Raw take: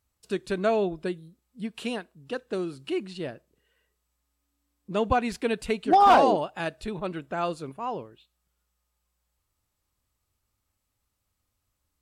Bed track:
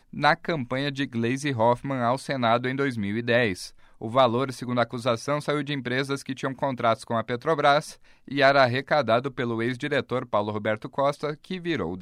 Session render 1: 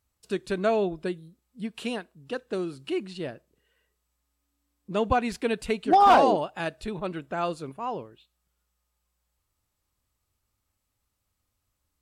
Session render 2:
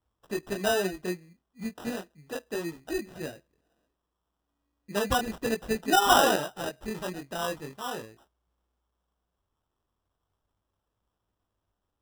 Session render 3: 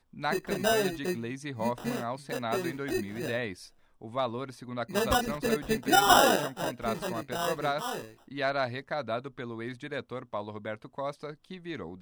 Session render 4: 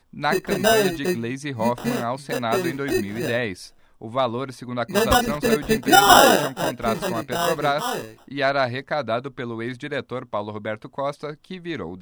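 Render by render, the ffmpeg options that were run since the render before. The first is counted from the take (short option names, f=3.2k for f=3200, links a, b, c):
-af anull
-af "flanger=delay=18:depth=4.7:speed=0.36,acrusher=samples=20:mix=1:aa=0.000001"
-filter_complex "[1:a]volume=-11dB[a];[0:a][a]amix=inputs=2:normalize=0"
-af "volume=8.5dB,alimiter=limit=-3dB:level=0:latency=1"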